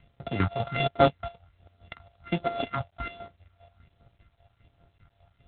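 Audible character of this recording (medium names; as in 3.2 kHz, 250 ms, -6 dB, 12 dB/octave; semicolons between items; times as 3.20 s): a buzz of ramps at a fixed pitch in blocks of 64 samples; chopped level 5 Hz, depth 65%, duty 40%; phasing stages 4, 1.3 Hz, lowest notch 280–2800 Hz; G.726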